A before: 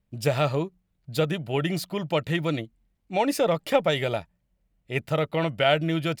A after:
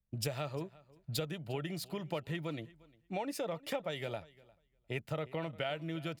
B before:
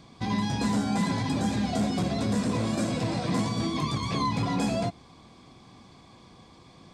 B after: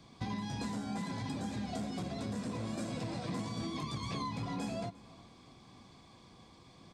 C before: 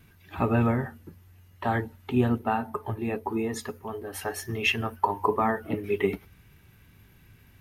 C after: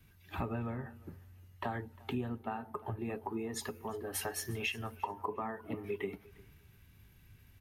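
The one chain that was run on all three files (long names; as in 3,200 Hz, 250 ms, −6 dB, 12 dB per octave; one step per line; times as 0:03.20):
downward compressor 6 to 1, threshold −36 dBFS
on a send: repeating echo 353 ms, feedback 23%, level −19 dB
on the sum: multiband upward and downward expander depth 40%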